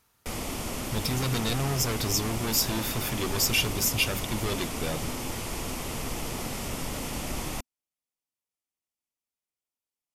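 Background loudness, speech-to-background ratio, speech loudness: -33.5 LUFS, 5.5 dB, -28.0 LUFS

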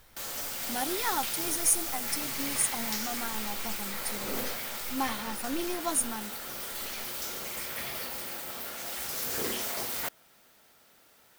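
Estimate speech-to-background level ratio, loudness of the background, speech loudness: 0.5 dB, -33.0 LUFS, -32.5 LUFS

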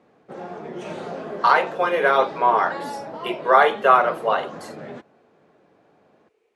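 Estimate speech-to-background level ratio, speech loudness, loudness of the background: 15.5 dB, -19.0 LUFS, -34.5 LUFS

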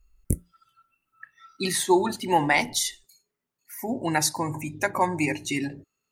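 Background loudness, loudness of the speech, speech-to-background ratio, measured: -32.0 LUFS, -25.5 LUFS, 6.5 dB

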